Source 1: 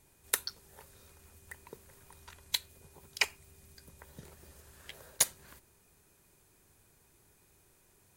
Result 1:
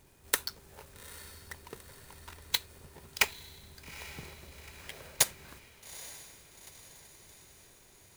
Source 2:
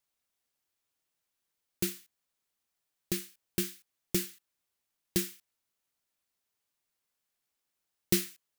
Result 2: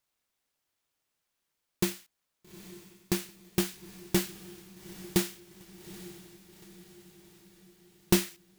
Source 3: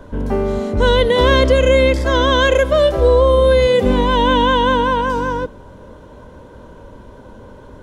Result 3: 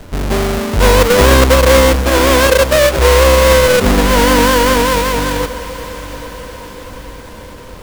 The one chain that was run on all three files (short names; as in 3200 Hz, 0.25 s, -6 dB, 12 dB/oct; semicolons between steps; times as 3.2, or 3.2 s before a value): half-waves squared off; diffused feedback echo 0.842 s, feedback 54%, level -15 dB; gain -1 dB